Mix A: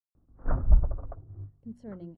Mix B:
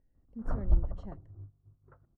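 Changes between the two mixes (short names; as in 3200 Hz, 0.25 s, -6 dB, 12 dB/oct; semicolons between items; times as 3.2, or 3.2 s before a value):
speech: entry -1.30 s; background -5.5 dB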